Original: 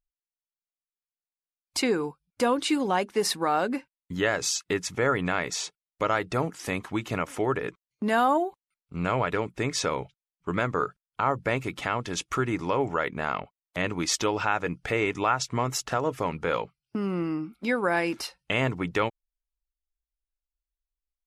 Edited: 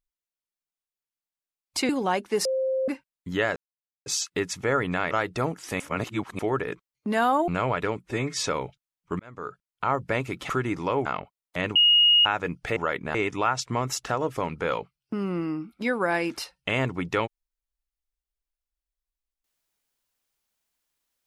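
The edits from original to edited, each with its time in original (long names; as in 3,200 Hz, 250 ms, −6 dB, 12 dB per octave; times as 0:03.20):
0:01.89–0:02.73: remove
0:03.29–0:03.72: beep over 526 Hz −22.5 dBFS
0:04.40: splice in silence 0.50 s
0:05.45–0:06.07: remove
0:06.76–0:07.35: reverse
0:08.44–0:08.98: remove
0:09.53–0:09.80: time-stretch 1.5×
0:10.56–0:11.24: fade in
0:11.86–0:12.32: remove
0:12.88–0:13.26: move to 0:14.97
0:13.96–0:14.46: beep over 2,870 Hz −14.5 dBFS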